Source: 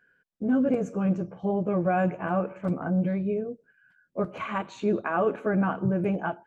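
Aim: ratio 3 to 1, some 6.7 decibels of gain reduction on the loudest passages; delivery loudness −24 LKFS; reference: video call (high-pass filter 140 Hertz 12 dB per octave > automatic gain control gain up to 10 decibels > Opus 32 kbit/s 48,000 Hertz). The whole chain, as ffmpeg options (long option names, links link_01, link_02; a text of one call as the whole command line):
ffmpeg -i in.wav -af "acompressor=threshold=-29dB:ratio=3,highpass=140,dynaudnorm=maxgain=10dB,volume=9.5dB" -ar 48000 -c:a libopus -b:a 32k out.opus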